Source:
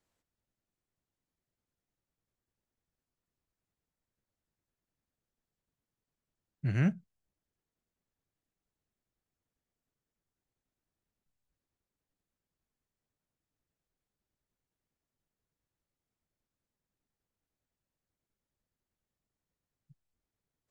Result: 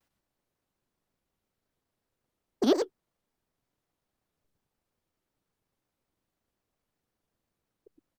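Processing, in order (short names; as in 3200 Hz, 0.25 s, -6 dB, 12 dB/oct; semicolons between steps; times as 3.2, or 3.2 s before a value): echo 0.278 s -6.5 dB; wide varispeed 2.53×; shaped vibrato square 5.5 Hz, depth 250 cents; gain +5.5 dB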